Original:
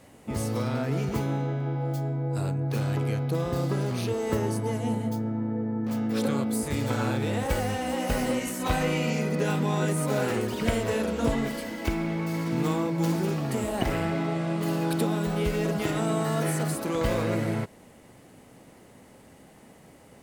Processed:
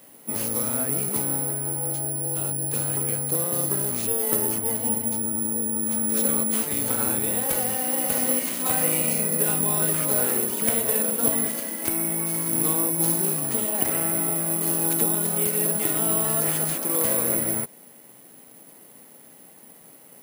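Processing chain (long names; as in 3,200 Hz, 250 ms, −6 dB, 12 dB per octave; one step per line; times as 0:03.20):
high-pass filter 170 Hz 12 dB per octave
bad sample-rate conversion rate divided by 4×, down none, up zero stuff
level −1.5 dB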